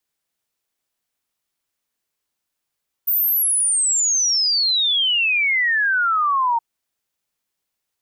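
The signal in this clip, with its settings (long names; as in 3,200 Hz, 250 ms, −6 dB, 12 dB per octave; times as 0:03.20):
exponential sine sweep 15,000 Hz → 910 Hz 3.52 s −15.5 dBFS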